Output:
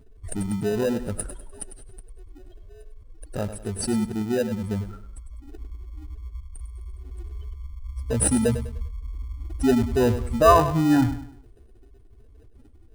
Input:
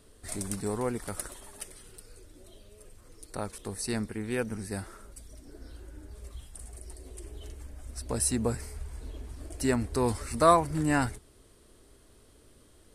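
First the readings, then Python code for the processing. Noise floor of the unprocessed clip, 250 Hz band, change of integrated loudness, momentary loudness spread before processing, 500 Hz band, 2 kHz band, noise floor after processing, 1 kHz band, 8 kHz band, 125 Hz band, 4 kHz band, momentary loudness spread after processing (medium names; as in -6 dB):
-59 dBFS, +8.5 dB, +6.5 dB, 21 LU, +7.0 dB, +2.5 dB, -51 dBFS, +5.0 dB, +3.5 dB, +7.5 dB, +4.0 dB, 21 LU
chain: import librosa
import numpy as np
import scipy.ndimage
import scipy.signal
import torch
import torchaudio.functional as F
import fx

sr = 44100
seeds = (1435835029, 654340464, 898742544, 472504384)

p1 = fx.spec_expand(x, sr, power=2.4)
p2 = fx.sample_hold(p1, sr, seeds[0], rate_hz=1100.0, jitter_pct=0)
p3 = p1 + F.gain(torch.from_numpy(p2), -7.0).numpy()
p4 = fx.echo_feedback(p3, sr, ms=100, feedback_pct=36, wet_db=-11.5)
y = F.gain(torch.from_numpy(p4), 5.5).numpy()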